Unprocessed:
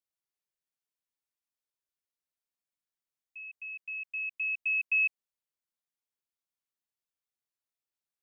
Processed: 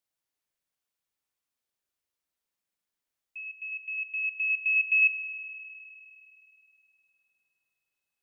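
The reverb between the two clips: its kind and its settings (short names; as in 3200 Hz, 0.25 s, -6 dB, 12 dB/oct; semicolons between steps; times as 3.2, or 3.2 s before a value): spring tank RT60 3.1 s, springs 41 ms, chirp 45 ms, DRR 4.5 dB; gain +4.5 dB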